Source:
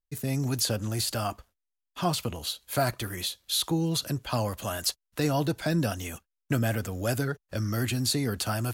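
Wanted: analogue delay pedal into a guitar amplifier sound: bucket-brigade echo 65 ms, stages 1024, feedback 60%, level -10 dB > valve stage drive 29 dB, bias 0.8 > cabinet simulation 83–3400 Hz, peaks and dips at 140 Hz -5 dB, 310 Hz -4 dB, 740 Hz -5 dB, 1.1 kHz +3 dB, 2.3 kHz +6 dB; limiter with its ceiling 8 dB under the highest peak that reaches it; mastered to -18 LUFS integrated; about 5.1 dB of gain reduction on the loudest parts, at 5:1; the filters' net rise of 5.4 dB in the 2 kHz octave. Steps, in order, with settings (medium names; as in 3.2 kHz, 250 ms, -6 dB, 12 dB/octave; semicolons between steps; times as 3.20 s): peaking EQ 2 kHz +5 dB; compression 5:1, threshold -27 dBFS; peak limiter -23 dBFS; bucket-brigade echo 65 ms, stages 1024, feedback 60%, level -10 dB; valve stage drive 29 dB, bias 0.8; cabinet simulation 83–3400 Hz, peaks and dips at 140 Hz -5 dB, 310 Hz -4 dB, 740 Hz -5 dB, 1.1 kHz +3 dB, 2.3 kHz +6 dB; trim +22 dB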